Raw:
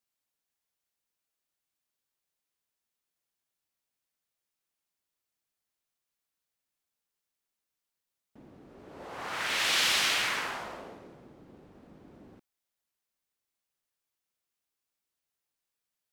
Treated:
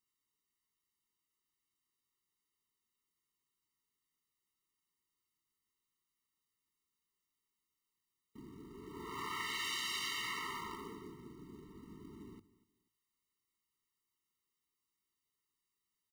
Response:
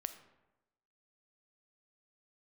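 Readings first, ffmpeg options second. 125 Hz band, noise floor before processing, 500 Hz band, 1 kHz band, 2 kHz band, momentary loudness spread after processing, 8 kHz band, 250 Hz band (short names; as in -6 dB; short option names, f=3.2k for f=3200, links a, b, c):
-2.0 dB, under -85 dBFS, -9.0 dB, -7.5 dB, -11.5 dB, 18 LU, -12.0 dB, -1.5 dB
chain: -filter_complex "[0:a]asplit=2[a][b];[b]acrusher=bits=5:mix=0:aa=0.000001,volume=-11dB[c];[a][c]amix=inputs=2:normalize=0,bandreject=f=50:t=h:w=6,bandreject=f=100:t=h:w=6,bandreject=f=150:t=h:w=6,acompressor=threshold=-38dB:ratio=4,acrusher=bits=4:mode=log:mix=0:aa=0.000001,aecho=1:1:242|484:0.106|0.0275,afftfilt=real='re*eq(mod(floor(b*sr/1024/450),2),0)':imag='im*eq(mod(floor(b*sr/1024/450),2),0)':win_size=1024:overlap=0.75,volume=1.5dB"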